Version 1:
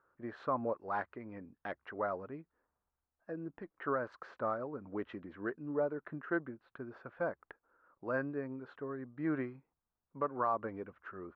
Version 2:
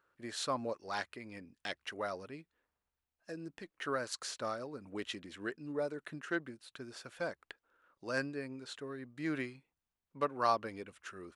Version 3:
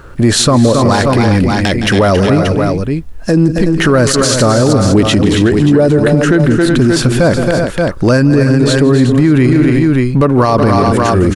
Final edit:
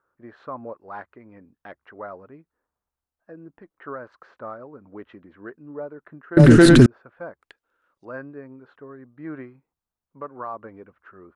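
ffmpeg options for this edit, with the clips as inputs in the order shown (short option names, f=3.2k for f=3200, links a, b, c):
-filter_complex "[0:a]asplit=3[a][b][c];[a]atrim=end=6.372[d];[2:a]atrim=start=6.368:end=6.862[e];[b]atrim=start=6.858:end=7.412[f];[1:a]atrim=start=7.408:end=8.052[g];[c]atrim=start=8.048[h];[d][e]acrossfade=d=0.004:c1=hsin:c2=hsin[i];[i][f]acrossfade=d=0.004:c1=hsin:c2=hsin[j];[j][g]acrossfade=d=0.004:c1=hsin:c2=hsin[k];[k][h]acrossfade=d=0.004:c1=hsin:c2=hsin"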